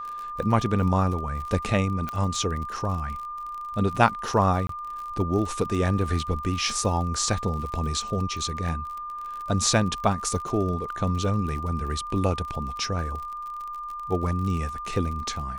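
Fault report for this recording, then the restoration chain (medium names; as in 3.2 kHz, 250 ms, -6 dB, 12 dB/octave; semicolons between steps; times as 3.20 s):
crackle 49 per s -33 dBFS
whine 1.2 kHz -32 dBFS
2.09 s: pop -17 dBFS
4.67–4.69 s: dropout 23 ms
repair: de-click; band-stop 1.2 kHz, Q 30; interpolate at 4.67 s, 23 ms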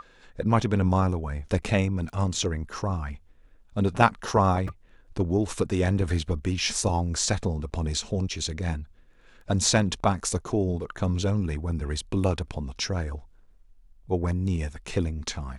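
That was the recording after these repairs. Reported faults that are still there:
2.09 s: pop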